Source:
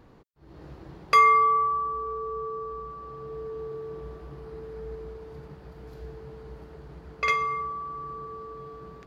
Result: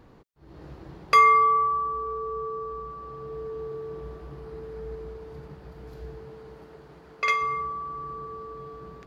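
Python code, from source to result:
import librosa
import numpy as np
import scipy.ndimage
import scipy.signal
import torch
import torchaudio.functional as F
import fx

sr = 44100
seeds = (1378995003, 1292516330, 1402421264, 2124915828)

y = fx.highpass(x, sr, hz=fx.line((6.23, 140.0), (7.41, 460.0)), slope=6, at=(6.23, 7.41), fade=0.02)
y = y * librosa.db_to_amplitude(1.0)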